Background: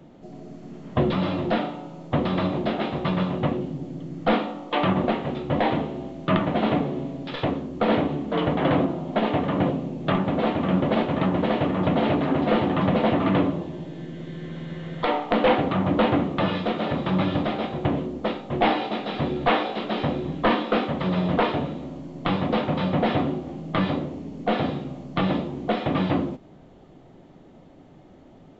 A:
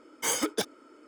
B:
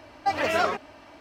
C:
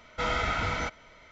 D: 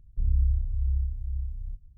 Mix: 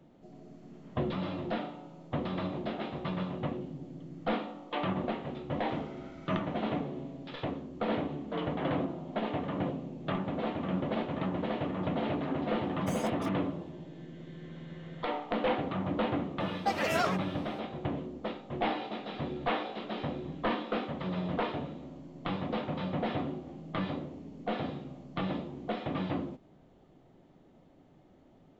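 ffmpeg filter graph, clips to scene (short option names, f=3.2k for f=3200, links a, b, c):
-filter_complex "[0:a]volume=-10.5dB[a];[3:a]acompressor=threshold=-41dB:ratio=6:attack=3.2:release=140:knee=1:detection=peak[b];[1:a]acompressor=threshold=-29dB:ratio=6:attack=3.2:release=140:knee=1:detection=peak[c];[2:a]highshelf=f=6.5k:g=7[d];[b]atrim=end=1.31,asetpts=PTS-STARTPTS,volume=-12.5dB,afade=t=in:d=0.004:c=hsin,afade=t=out:st=1.306:d=0.004:c=hsin,adelay=5510[e];[c]atrim=end=1.07,asetpts=PTS-STARTPTS,volume=-13dB,afade=t=in:d=0.004:c=hsin,afade=t=out:st=1.066:d=0.004:c=hsin,adelay=12640[f];[d]atrim=end=1.2,asetpts=PTS-STARTPTS,volume=-6dB,afade=t=in:d=0.004:c=hsin,afade=t=out:st=1.196:d=0.004:c=hsin,adelay=16400[g];[a][e][f][g]amix=inputs=4:normalize=0"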